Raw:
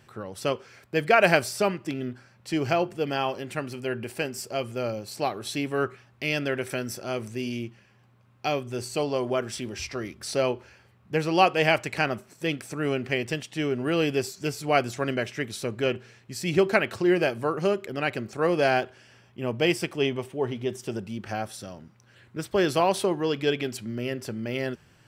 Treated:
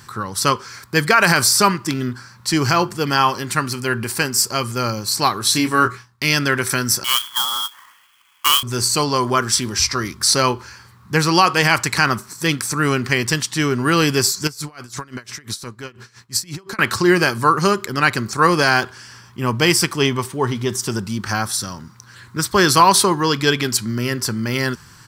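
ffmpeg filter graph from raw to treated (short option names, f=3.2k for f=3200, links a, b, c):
-filter_complex "[0:a]asettb=1/sr,asplit=3[a][b][c];[a]atrim=end=5.524[d];[b]atrim=start=5.52:end=6.25,asetpts=PTS-STARTPTS,afade=t=in:d=0.004:c=qsin,afade=t=out:st=0.726:d=0.004:c=qsin,agate=range=-33dB:threshold=-49dB:ratio=3:release=100:detection=peak,asplit=2[e][f];[f]adelay=25,volume=-7dB[g];[e][g]amix=inputs=2:normalize=0,atrim=end_sample=32193[h];[c]atrim=start=6.246[i];[d][h]acrossfade=d=0.004:c1=hsin:c2=qsin[j];[j][i]acrossfade=d=0.004:c1=qsin:c2=hsin,asettb=1/sr,asplit=3[k][l][m];[k]atrim=end=7.044[n];[l]atrim=start=7.04:end=8.63,asetpts=PTS-STARTPTS,afade=t=in:d=0.004:c=qsin,afade=t=out:st=1.586:d=0.004:c=qsin,highpass=f=290:w=0.5412,highpass=f=290:w=1.3066,lowpass=f=3.1k:t=q:w=0.5098,lowpass=f=3.1k:t=q:w=0.6013,lowpass=f=3.1k:t=q:w=0.9,lowpass=f=3.1k:t=q:w=2.563,afreqshift=-3600,acrusher=bits=2:mode=log:mix=0:aa=0.000001[o];[m]atrim=start=8.626[p];[n][o]acrossfade=d=0.004:c1=hsin:c2=qsin[q];[q][p]acrossfade=d=0.004:c1=qsin:c2=hsin,asettb=1/sr,asplit=3[r][s][t];[r]atrim=end=14.474[u];[s]atrim=start=14.47:end=16.79,asetpts=PTS-STARTPTS,afade=t=in:d=0.004:c=qsin,afade=t=out:st=2.316:d=0.004:c=qsin,acompressor=threshold=-32dB:ratio=20:attack=3.2:release=140:knee=1:detection=peak,aeval=exprs='val(0)*pow(10,-20*(0.5-0.5*cos(2*PI*5.8*n/s))/20)':c=same[v];[t]atrim=start=16.786[w];[u][v]acrossfade=d=0.004:c1=hsin:c2=qsin[x];[x][w]acrossfade=d=0.004:c1=qsin:c2=hsin,firequalizer=gain_entry='entry(120,0);entry(650,-12);entry(1000,7);entry(2700,-5);entry(4300,8)':delay=0.05:min_phase=1,alimiter=level_in=13dB:limit=-1dB:release=50:level=0:latency=1,volume=-1dB"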